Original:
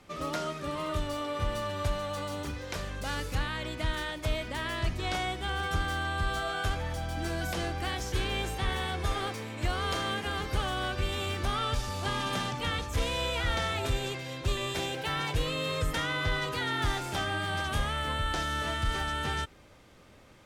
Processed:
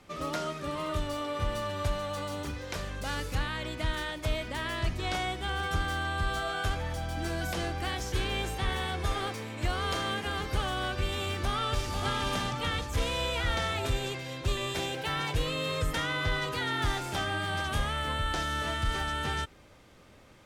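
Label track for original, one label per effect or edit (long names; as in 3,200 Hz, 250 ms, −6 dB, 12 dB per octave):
11.230000	11.920000	delay throw 490 ms, feedback 45%, level −6 dB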